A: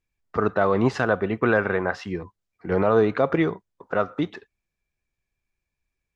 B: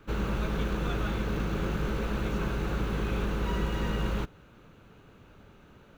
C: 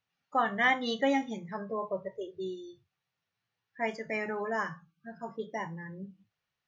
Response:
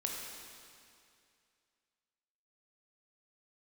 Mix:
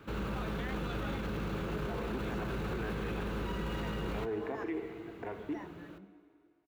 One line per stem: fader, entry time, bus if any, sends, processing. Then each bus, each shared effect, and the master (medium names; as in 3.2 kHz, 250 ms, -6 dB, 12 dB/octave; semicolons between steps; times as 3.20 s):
-13.0 dB, 1.30 s, send -3.5 dB, local Wiener filter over 41 samples; static phaser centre 850 Hz, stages 8
+0.5 dB, 0.00 s, send -13 dB, none
-13.0 dB, 0.00 s, no send, none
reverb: on, RT60 2.4 s, pre-delay 17 ms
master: high-pass 59 Hz 12 dB/octave; peaking EQ 6.2 kHz -5 dB 0.22 oct; peak limiter -28.5 dBFS, peak gain reduction 11 dB